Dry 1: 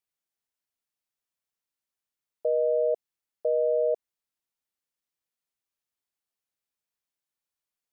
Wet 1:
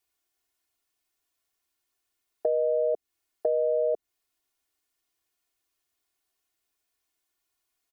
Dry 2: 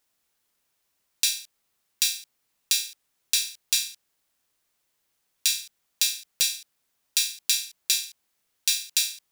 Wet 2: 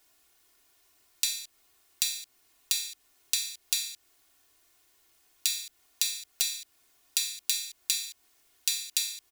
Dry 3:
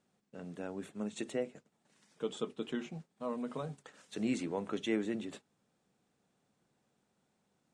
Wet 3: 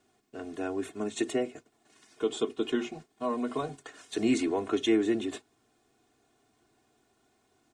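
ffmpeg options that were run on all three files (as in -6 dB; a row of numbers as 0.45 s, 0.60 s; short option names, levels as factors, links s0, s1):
-filter_complex "[0:a]aecho=1:1:2.8:0.99,acrossover=split=330[s0][s1];[s1]acompressor=threshold=0.0251:ratio=6[s2];[s0][s2]amix=inputs=2:normalize=0,volume=2"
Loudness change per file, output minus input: -0.5 LU, -5.0 LU, +8.0 LU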